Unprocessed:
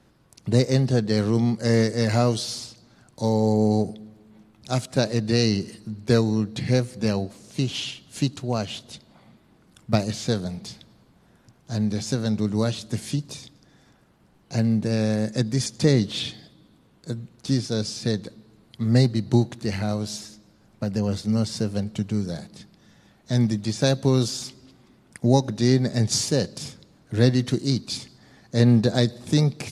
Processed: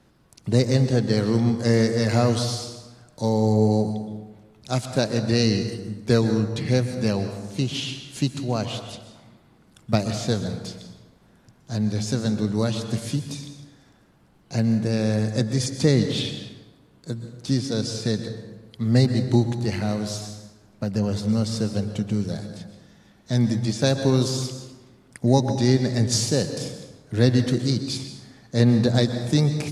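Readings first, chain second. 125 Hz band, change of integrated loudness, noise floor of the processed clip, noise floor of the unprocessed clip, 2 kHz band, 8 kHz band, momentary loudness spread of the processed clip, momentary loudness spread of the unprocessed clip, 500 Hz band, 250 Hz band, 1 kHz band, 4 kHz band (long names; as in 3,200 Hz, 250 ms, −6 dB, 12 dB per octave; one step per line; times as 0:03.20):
+1.0 dB, +0.5 dB, −57 dBFS, −58 dBFS, +0.5 dB, +0.5 dB, 15 LU, 12 LU, +0.5 dB, +0.5 dB, +0.5 dB, +0.5 dB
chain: dense smooth reverb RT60 1.2 s, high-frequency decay 0.55×, pre-delay 110 ms, DRR 8 dB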